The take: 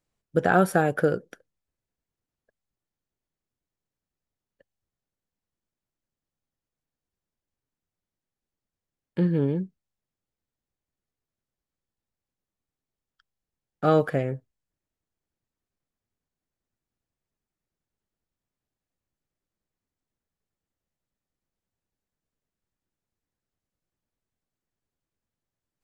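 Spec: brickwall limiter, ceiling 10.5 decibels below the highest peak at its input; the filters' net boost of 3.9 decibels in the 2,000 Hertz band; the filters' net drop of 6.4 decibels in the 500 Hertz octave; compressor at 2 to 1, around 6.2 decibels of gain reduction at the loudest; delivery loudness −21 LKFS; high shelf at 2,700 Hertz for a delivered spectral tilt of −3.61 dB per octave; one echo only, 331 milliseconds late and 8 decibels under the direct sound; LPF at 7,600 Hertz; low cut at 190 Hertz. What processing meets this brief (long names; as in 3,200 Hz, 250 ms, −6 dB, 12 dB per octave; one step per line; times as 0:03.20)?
high-pass filter 190 Hz
low-pass filter 7,600 Hz
parametric band 500 Hz −8 dB
parametric band 2,000 Hz +8 dB
high-shelf EQ 2,700 Hz −4 dB
downward compressor 2 to 1, threshold −27 dBFS
brickwall limiter −23.5 dBFS
single-tap delay 331 ms −8 dB
level +15.5 dB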